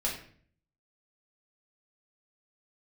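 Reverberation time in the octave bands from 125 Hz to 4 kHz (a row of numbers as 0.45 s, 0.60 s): 0.85 s, 0.70 s, 0.55 s, 0.45 s, 0.50 s, 0.40 s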